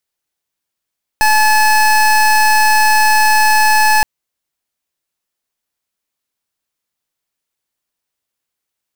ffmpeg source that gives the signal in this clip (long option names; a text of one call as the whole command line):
ffmpeg -f lavfi -i "aevalsrc='0.316*(2*lt(mod(860*t,1),0.25)-1)':duration=2.82:sample_rate=44100" out.wav